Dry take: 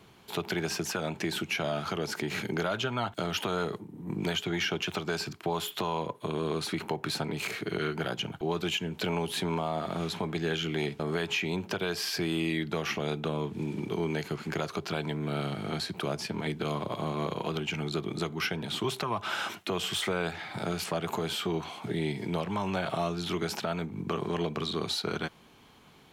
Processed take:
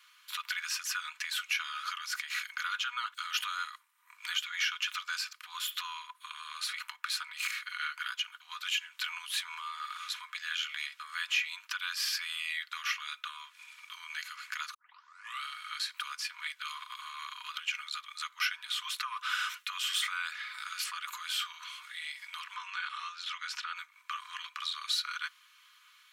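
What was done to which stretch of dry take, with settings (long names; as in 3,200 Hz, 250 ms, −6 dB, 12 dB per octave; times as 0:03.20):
0:14.74: tape start 0.69 s
0:22.55–0:23.76: high-frequency loss of the air 67 metres
whole clip: Butterworth high-pass 1,100 Hz 72 dB per octave; comb filter 4.1 ms, depth 43%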